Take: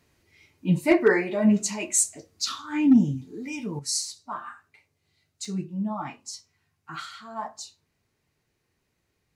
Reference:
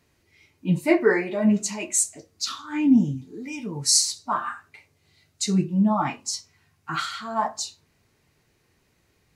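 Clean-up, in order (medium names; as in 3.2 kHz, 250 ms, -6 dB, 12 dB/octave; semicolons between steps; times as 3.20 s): clip repair -9.5 dBFS; interpolate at 5.45 s, 3.2 ms; trim 0 dB, from 3.79 s +9 dB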